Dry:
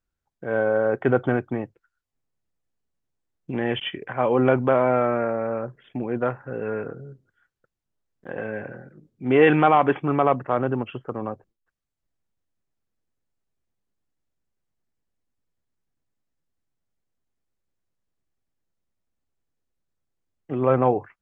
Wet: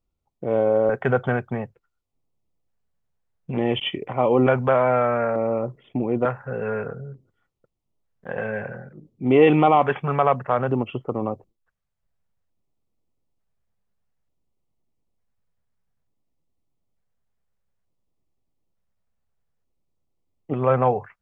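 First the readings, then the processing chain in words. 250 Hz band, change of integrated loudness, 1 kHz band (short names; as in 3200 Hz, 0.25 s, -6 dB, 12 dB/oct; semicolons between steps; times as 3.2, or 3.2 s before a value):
+0.5 dB, +1.0 dB, +1.0 dB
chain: in parallel at -1 dB: compressor, threshold -26 dBFS, peak gain reduction 14 dB; on the sum: LFO notch square 0.56 Hz 310–1600 Hz; mismatched tape noise reduction decoder only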